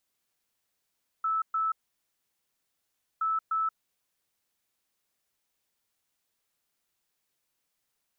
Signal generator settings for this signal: beep pattern sine 1.31 kHz, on 0.18 s, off 0.12 s, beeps 2, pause 1.49 s, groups 2, -25 dBFS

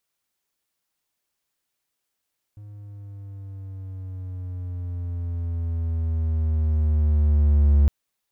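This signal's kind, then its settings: gliding synth tone triangle, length 5.31 s, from 104 Hz, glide -6.5 st, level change +26 dB, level -10.5 dB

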